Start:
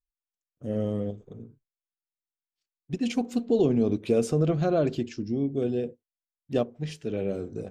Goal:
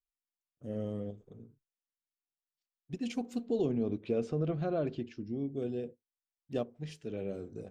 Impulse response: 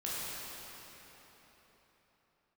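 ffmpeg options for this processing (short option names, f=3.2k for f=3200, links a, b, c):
-filter_complex "[0:a]asettb=1/sr,asplit=3[a][b][c];[a]atrim=end=3.714[d];[b]atrim=start=3.71:end=5.39,asetpts=PTS-STARTPTS,afade=t=in:d=0.004:c=qsin,afade=t=out:st=1.676:d=0.004:c=qsin,lowpass=3.7k[e];[c]atrim=start=5.386[f];[d][e]acrossfade=d=0.004:c1=hsin:c2=qsin[g];[g][f]acrossfade=d=0.004:c1=qsin:c2=hsin,volume=-8.5dB"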